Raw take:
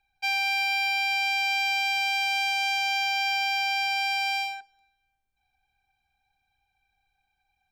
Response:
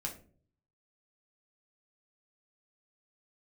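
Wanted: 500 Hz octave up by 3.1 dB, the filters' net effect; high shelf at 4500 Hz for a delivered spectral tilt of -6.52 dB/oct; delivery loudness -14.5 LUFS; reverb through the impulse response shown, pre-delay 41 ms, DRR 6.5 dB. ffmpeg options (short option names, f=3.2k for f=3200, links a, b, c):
-filter_complex "[0:a]equalizer=f=500:t=o:g=8.5,highshelf=f=4.5k:g=-6.5,asplit=2[a][b];[1:a]atrim=start_sample=2205,adelay=41[c];[b][c]afir=irnorm=-1:irlink=0,volume=-7dB[d];[a][d]amix=inputs=2:normalize=0,volume=8dB"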